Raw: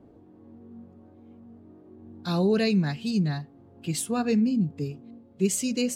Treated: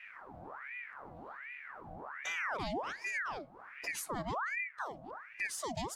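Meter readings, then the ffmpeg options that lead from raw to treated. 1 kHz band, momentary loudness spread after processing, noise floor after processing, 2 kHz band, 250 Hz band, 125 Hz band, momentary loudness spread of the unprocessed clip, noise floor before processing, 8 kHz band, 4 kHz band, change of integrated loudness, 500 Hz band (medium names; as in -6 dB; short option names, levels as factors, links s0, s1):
0.0 dB, 13 LU, -54 dBFS, +3.0 dB, -23.0 dB, -21.0 dB, 14 LU, -54 dBFS, -12.0 dB, -11.0 dB, -13.0 dB, -14.5 dB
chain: -af "acompressor=threshold=0.00708:ratio=3,aeval=exprs='val(0)*sin(2*PI*1300*n/s+1300*0.7/1.3*sin(2*PI*1.3*n/s))':c=same,volume=1.68"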